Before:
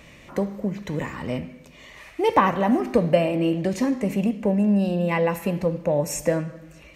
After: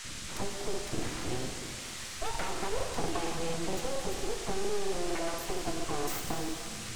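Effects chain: tone controls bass +9 dB, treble +7 dB; compressor 2.5:1, threshold -31 dBFS, peak gain reduction 13.5 dB; low shelf 92 Hz +7.5 dB; dispersion lows, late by 50 ms, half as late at 380 Hz; full-wave rectifier; band noise 1100–8800 Hz -41 dBFS; crackling interface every 0.23 s, samples 2048, repeat, from 0.69; shimmer reverb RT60 2 s, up +7 st, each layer -8 dB, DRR 6 dB; gain -3.5 dB

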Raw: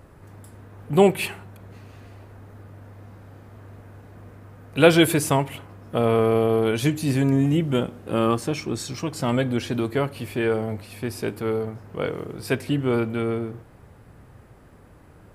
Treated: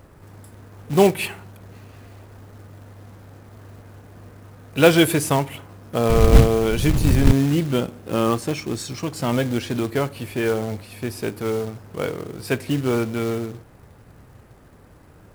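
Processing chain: 6.09–7.31 wind noise 98 Hz -18 dBFS; short-mantissa float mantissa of 2-bit; gain +1 dB

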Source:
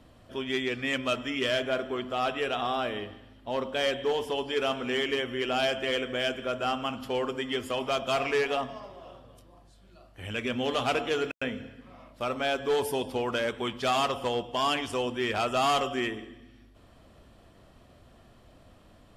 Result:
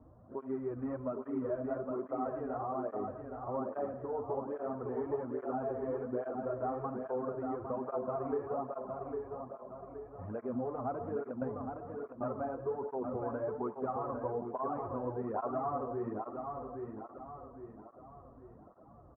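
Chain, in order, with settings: CVSD 64 kbps; steep low-pass 1200 Hz 36 dB/oct; compressor, threshold -31 dBFS, peak gain reduction 8.5 dB; on a send: feedback echo 0.812 s, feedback 43%, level -5 dB; on the sum: tape flanging out of phase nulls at 1.2 Hz, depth 6 ms

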